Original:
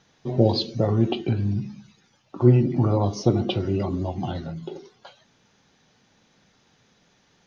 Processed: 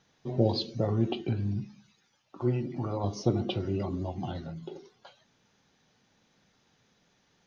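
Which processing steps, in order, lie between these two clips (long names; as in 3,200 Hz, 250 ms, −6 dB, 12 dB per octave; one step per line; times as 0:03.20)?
0:01.64–0:03.04: low-shelf EQ 460 Hz −7.5 dB
level −6.5 dB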